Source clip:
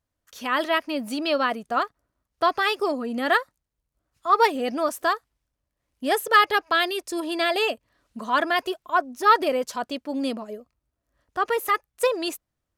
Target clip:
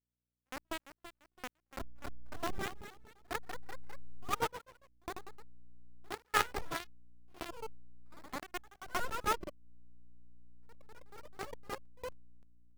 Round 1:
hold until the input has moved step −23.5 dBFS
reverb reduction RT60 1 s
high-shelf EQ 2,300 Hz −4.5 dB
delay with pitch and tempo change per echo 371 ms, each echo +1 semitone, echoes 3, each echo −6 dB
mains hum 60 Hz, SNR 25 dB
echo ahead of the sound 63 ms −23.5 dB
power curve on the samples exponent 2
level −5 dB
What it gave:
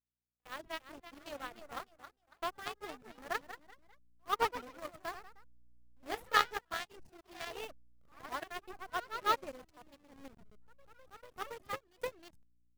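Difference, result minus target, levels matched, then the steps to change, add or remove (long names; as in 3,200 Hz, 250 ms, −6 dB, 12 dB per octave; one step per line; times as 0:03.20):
hold until the input has moved: distortion −15 dB
change: hold until the input has moved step −12.5 dBFS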